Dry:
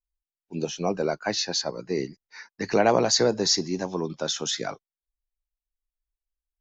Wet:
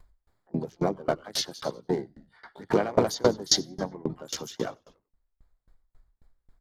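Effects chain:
adaptive Wiener filter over 15 samples
pitch-shifted copies added −4 semitones −7 dB, +12 semitones −15 dB
in parallel at +1.5 dB: upward compression, threshold −24 dBFS
on the sum: notch filter 2,600 Hz, Q 10
on a send: echo with shifted repeats 95 ms, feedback 47%, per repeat −64 Hz, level −19.5 dB
on the sum: tremolo with a ramp in dB decaying 3.7 Hz, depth 28 dB
level −2.5 dB

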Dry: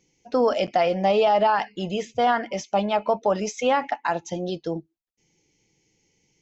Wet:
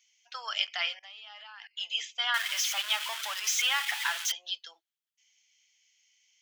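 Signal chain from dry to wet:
0:02.34–0:04.32: converter with a step at zero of −26 dBFS
high-pass filter 1,400 Hz 24 dB per octave
parametric band 3,200 Hz +9 dB 0.29 octaves
0:00.99–0:01.77: output level in coarse steps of 24 dB

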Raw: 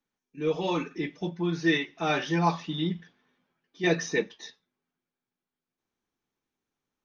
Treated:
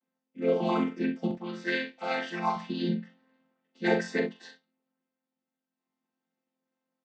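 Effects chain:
channel vocoder with a chord as carrier major triad, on F3
high-pass filter 250 Hz 6 dB per octave, from 0:01.31 1,300 Hz, from 0:02.56 370 Hz
ambience of single reflections 42 ms −7.5 dB, 65 ms −13 dB
level +4 dB

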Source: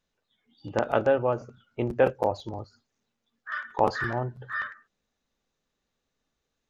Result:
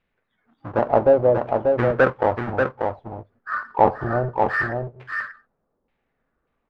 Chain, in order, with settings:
each half-wave held at its own peak
auto-filter low-pass saw down 0.68 Hz 490–2,500 Hz
single-tap delay 588 ms −4.5 dB

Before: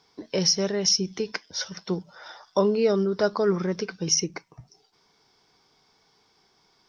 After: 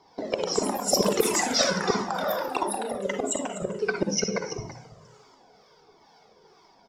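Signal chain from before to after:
noise gate −52 dBFS, range −7 dB
parametric band 550 Hz +14.5 dB 1.8 octaves
mains-hum notches 60/120/180/240/300 Hz
in parallel at +2 dB: downward compressor 10 to 1, threshold −32 dBFS, peak gain reduction 27 dB
on the sum: two-band tremolo in antiphase 2.2 Hz, depth 50%, crossover 850 Hz
gate with flip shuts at −11 dBFS, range −25 dB
single-tap delay 332 ms −13.5 dB
on a send at −3.5 dB: convolution reverb RT60 0.45 s, pre-delay 47 ms
on the sum: delay with pitch and tempo change per echo 184 ms, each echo +5 semitones, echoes 3
flanger whose copies keep moving one way falling 1.5 Hz
level +6 dB

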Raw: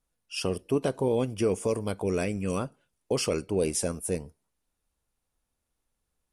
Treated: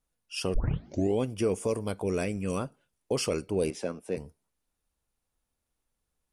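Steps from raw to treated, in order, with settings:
0:00.54: tape start 0.66 s
0:03.70–0:04.17: three-way crossover with the lows and the highs turned down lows −17 dB, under 170 Hz, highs −22 dB, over 4,600 Hz
level −1.5 dB

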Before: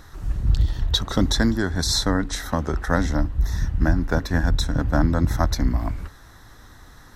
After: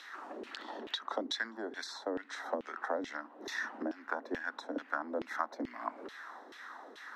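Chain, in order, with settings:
Butterworth high-pass 220 Hz 96 dB per octave
downward compressor 6 to 1, threshold −36 dBFS, peak gain reduction 18 dB
auto-filter band-pass saw down 2.3 Hz 380–3,100 Hz
level +9 dB

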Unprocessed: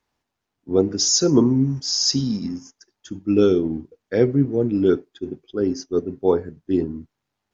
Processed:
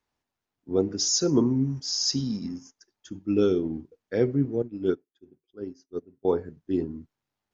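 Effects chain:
0:04.62–0:06.25: expander for the loud parts 2.5 to 1, over −26 dBFS
level −6 dB

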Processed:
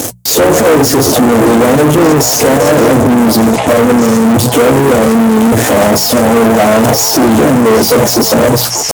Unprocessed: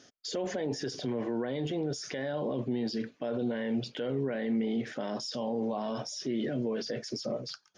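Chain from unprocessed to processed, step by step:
in parallel at −10 dB: fuzz pedal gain 61 dB, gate −54 dBFS
on the sum: pitch-shifted copies added −3 semitones −7 dB
echo through a band-pass that steps 512 ms, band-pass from 1,000 Hz, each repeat 1.4 octaves, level −4 dB
tempo change 0.87×
flat-topped bell 2,400 Hz −13.5 dB 2.6 octaves
mains-hum notches 60/120/180 Hz
notch comb filter 190 Hz
tube saturation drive 30 dB, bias 0.75
high-pass filter 64 Hz
boost into a limiter +35.5 dB
level −1 dB

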